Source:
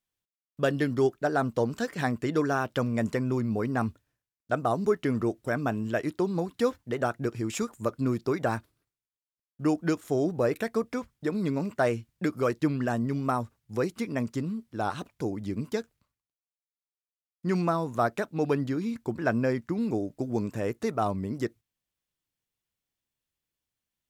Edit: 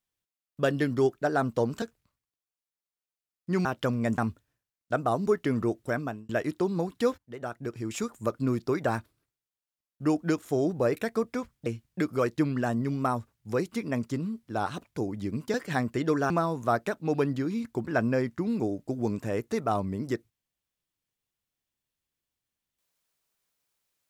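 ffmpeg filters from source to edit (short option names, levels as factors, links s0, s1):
-filter_complex "[0:a]asplit=9[s0][s1][s2][s3][s4][s5][s6][s7][s8];[s0]atrim=end=1.822[s9];[s1]atrim=start=15.778:end=17.612[s10];[s2]atrim=start=2.578:end=3.112[s11];[s3]atrim=start=3.768:end=5.88,asetpts=PTS-STARTPTS,afade=t=out:st=1.732:d=0.38[s12];[s4]atrim=start=5.88:end=6.77,asetpts=PTS-STARTPTS,afade=t=in:d=0.004:c=hsin,afade=t=out:st=0.886:d=0.004:c=hsin:silence=0.177828[s13];[s5]atrim=start=6.77:end=11.252,asetpts=PTS-STARTPTS,afade=t=in:d=1.03:silence=0.177828[s14];[s6]atrim=start=11.898:end=15.782[s15];[s7]atrim=start=1.818:end=2.582[s16];[s8]atrim=start=17.608[s17];[s9][s10]acrossfade=d=0.004:c1=hsin:c2=hsin[s18];[s18][s11]acrossfade=d=0.004:c1=hsin:c2=hsin[s19];[s12][s13][s14]concat=n=3:v=0:a=1[s20];[s19][s20]acrossfade=d=0.004:c1=hsin:c2=hsin[s21];[s21][s15]acrossfade=d=0.004:c1=hsin:c2=hsin[s22];[s22][s16]acrossfade=d=0.004:c1=hsin:c2=hsin[s23];[s23][s17]acrossfade=d=0.004:c1=hsin:c2=hsin"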